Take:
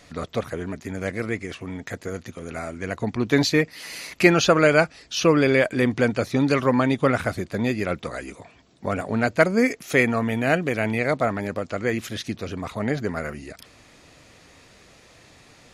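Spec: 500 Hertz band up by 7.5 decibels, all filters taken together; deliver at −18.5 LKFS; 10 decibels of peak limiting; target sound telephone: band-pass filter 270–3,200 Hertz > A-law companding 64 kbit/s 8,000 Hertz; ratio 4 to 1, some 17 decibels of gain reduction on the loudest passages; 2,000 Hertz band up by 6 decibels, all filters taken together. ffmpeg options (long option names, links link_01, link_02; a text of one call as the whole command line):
ffmpeg -i in.wav -af "equalizer=frequency=500:width_type=o:gain=9,equalizer=frequency=2000:width_type=o:gain=7.5,acompressor=threshold=-26dB:ratio=4,alimiter=limit=-20.5dB:level=0:latency=1,highpass=270,lowpass=3200,volume=15dB" -ar 8000 -c:a pcm_alaw out.wav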